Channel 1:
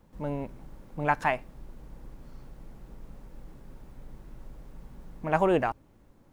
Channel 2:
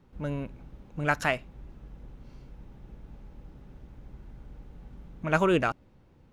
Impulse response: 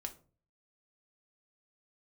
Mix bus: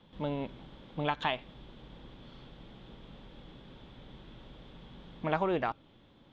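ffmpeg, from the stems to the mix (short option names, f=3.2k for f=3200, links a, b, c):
-filter_complex "[0:a]acompressor=threshold=-28dB:ratio=6,highpass=110,volume=0.5dB[a];[1:a]lowshelf=f=170:g=9,volume=-18.5dB,asplit=2[b][c];[c]volume=-10.5dB[d];[2:a]atrim=start_sample=2205[e];[d][e]afir=irnorm=-1:irlink=0[f];[a][b][f]amix=inputs=3:normalize=0,lowpass=f=3.4k:t=q:w=8.8"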